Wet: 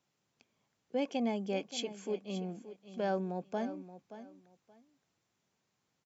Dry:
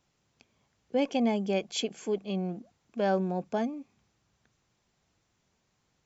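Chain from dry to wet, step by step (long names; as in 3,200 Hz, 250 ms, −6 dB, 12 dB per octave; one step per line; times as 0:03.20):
high-pass filter 130 Hz 12 dB per octave
on a send: repeating echo 576 ms, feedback 21%, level −13.5 dB
on the sum: level −6 dB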